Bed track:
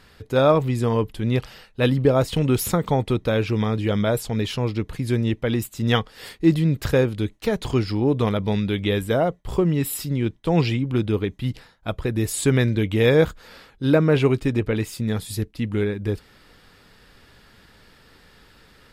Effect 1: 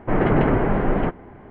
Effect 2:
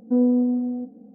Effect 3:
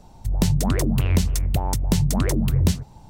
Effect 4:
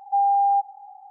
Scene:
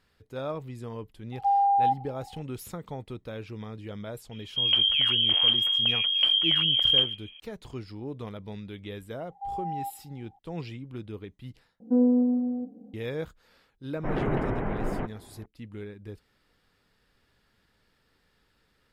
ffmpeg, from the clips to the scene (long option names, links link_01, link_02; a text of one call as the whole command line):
ffmpeg -i bed.wav -i cue0.wav -i cue1.wav -i cue2.wav -i cue3.wav -filter_complex "[4:a]asplit=2[link_01][link_02];[0:a]volume=-17dB[link_03];[3:a]lowpass=frequency=2800:width_type=q:width=0.5098,lowpass=frequency=2800:width_type=q:width=0.6013,lowpass=frequency=2800:width_type=q:width=0.9,lowpass=frequency=2800:width_type=q:width=2.563,afreqshift=-3300[link_04];[link_03]asplit=2[link_05][link_06];[link_05]atrim=end=11.804[link_07];[2:a]atrim=end=1.14,asetpts=PTS-STARTPTS,volume=-2.5dB[link_08];[link_06]atrim=start=12.936[link_09];[link_01]atrim=end=1.1,asetpts=PTS-STARTPTS,volume=-3dB,afade=type=in:duration=0.004:curve=hsin,afade=type=out:start_time=1.096:duration=0.004:curve=hsin,adelay=1320[link_10];[link_04]atrim=end=3.09,asetpts=PTS-STARTPTS,volume=-4dB,afade=type=in:duration=0.004:curve=hsin,afade=type=out:start_time=3.086:duration=0.004:curve=hsin,adelay=4310[link_11];[link_02]atrim=end=1.1,asetpts=PTS-STARTPTS,volume=-15dB,afade=type=in:duration=0.004:curve=hsin,afade=type=out:start_time=1.096:duration=0.004:curve=hsin,adelay=9290[link_12];[1:a]atrim=end=1.5,asetpts=PTS-STARTPTS,volume=-10dB,afade=type=in:duration=0.004:curve=hsin,afade=type=out:start_time=1.496:duration=0.004:curve=hsin,adelay=615636S[link_13];[link_07][link_08]acrossfade=duration=0.004:curve1=hsin:curve2=hsin[link_14];[link_14][link_09]acrossfade=duration=0.004:curve1=hsin:curve2=hsin[link_15];[link_15][link_10][link_11][link_12][link_13]amix=inputs=5:normalize=0" out.wav